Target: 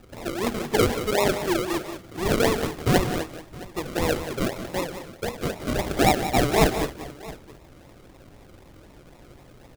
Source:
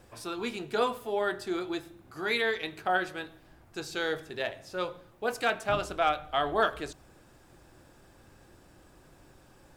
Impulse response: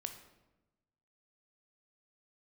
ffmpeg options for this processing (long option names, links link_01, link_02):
-filter_complex "[0:a]asettb=1/sr,asplit=3[link_01][link_02][link_03];[link_01]atrim=end=4.794[link_04];[link_02]atrim=start=4.79:end=5.76,asetpts=PTS-STARTPTS,afade=type=in:duration=0.004:curve=qsin,afade=type=out:start_time=0.966:duration=0.004:curve=qsin,acrossover=split=210[link_05][link_06];[link_06]acompressor=threshold=-33dB:ratio=6[link_07];[link_05][link_07]amix=inputs=2:normalize=0[link_08];[link_03]atrim=start=5.756[link_09];[link_04][link_08]acrossfade=duration=0.004:curve1=hsin:curve2=qsin[link_10];[link_10][link_09]acrossfade=duration=0.004:curve1=qsin:curve2=hsin,acrusher=samples=40:mix=1:aa=0.000001:lfo=1:lforange=24:lforate=3.9,aecho=1:1:155|181|667:0.126|0.299|0.106,volume=7.5dB"